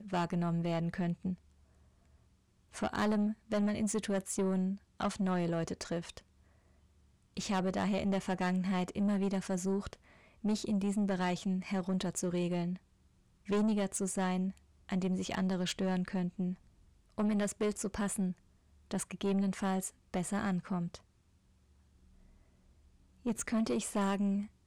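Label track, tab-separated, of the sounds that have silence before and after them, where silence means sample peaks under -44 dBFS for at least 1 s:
2.740000	6.190000	sound
7.370000	20.960000	sound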